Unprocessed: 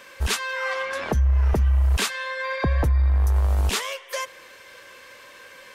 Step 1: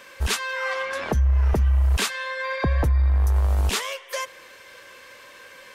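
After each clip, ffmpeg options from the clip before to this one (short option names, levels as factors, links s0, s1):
-af anull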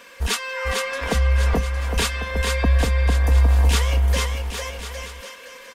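-filter_complex "[0:a]aecho=1:1:4.2:0.56,asplit=2[s0][s1];[s1]aecho=0:1:450|810|1098|1328|1513:0.631|0.398|0.251|0.158|0.1[s2];[s0][s2]amix=inputs=2:normalize=0"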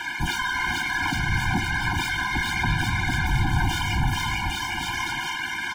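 -filter_complex "[0:a]asplit=2[s0][s1];[s1]highpass=f=720:p=1,volume=63.1,asoftclip=type=tanh:threshold=0.422[s2];[s0][s2]amix=inputs=2:normalize=0,lowpass=f=1900:p=1,volume=0.501,afftfilt=real='hypot(re,im)*cos(2*PI*random(0))':imag='hypot(re,im)*sin(2*PI*random(1))':win_size=512:overlap=0.75,afftfilt=real='re*eq(mod(floor(b*sr/1024/350),2),0)':imag='im*eq(mod(floor(b*sr/1024/350),2),0)':win_size=1024:overlap=0.75"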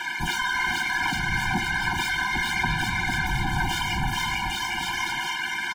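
-af "lowshelf=f=250:g=-5.5,aecho=1:1:5.2:0.34"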